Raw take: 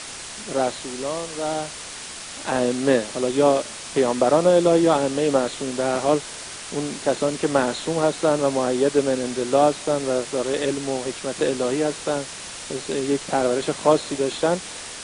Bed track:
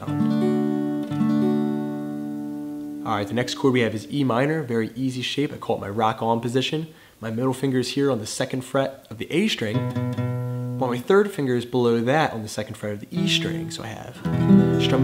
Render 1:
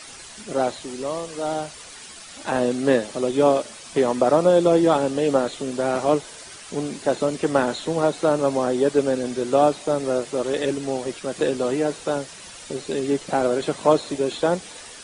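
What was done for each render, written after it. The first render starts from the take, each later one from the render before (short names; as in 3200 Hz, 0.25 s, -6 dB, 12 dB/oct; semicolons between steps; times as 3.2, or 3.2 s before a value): denoiser 9 dB, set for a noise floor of -36 dBFS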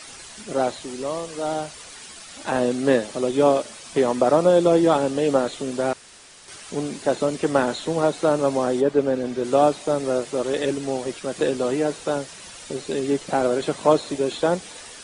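5.93–6.48 room tone; 8.8–9.43 LPF 1600 Hz -> 3400 Hz 6 dB/oct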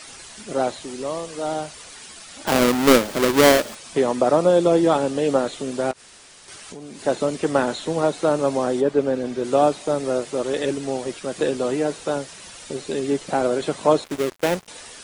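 2.47–3.75 half-waves squared off; 5.91–7.02 compressor, threshold -34 dBFS; 14.04–14.68 switching dead time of 0.28 ms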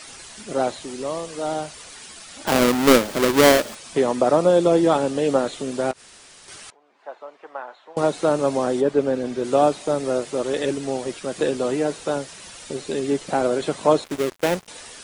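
6.7–7.97 ladder band-pass 1100 Hz, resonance 30%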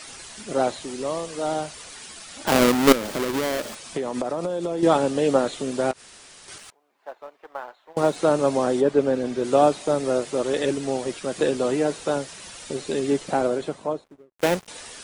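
2.92–4.83 compressor 16:1, threshold -22 dBFS; 6.58–8.16 G.711 law mismatch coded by A; 13.12–14.39 studio fade out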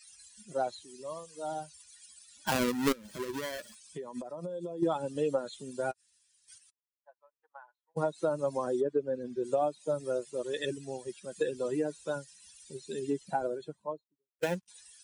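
per-bin expansion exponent 2; compressor 6:1, threshold -26 dBFS, peak gain reduction 13.5 dB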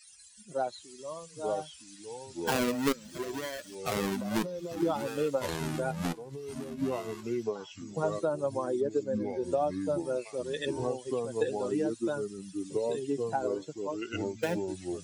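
echoes that change speed 0.743 s, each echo -4 st, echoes 2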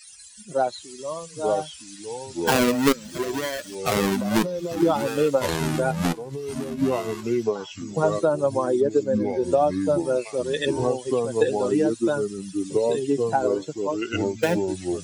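gain +9 dB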